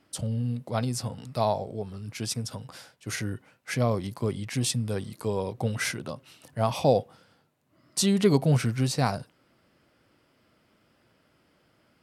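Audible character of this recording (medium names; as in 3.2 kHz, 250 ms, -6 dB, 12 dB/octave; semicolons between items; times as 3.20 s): noise floor -67 dBFS; spectral tilt -5.5 dB/octave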